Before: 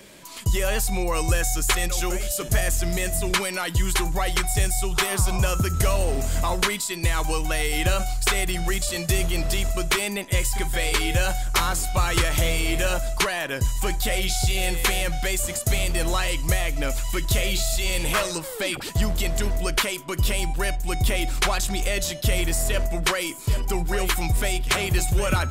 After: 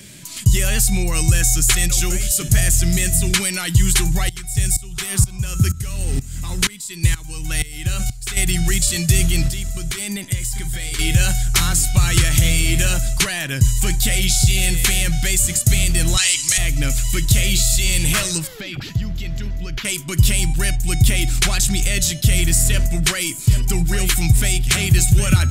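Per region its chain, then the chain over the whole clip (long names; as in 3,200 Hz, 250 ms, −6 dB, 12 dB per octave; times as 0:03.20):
0:04.29–0:08.37: notch filter 660 Hz, Q 6.5 + tremolo with a ramp in dB swelling 2.1 Hz, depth 19 dB
0:09.48–0:10.99: notch filter 2,600 Hz, Q 16 + downward compressor 10 to 1, threshold −27 dBFS
0:16.17–0:16.58: meter weighting curve ITU-R 468 + saturating transformer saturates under 2,300 Hz
0:18.47–0:19.85: downward compressor 3 to 1, threshold −30 dBFS + moving average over 5 samples
whole clip: octave-band graphic EQ 125/500/1,000/8,000 Hz +10/−10/−10/+5 dB; boost into a limiter +8.5 dB; level −2.5 dB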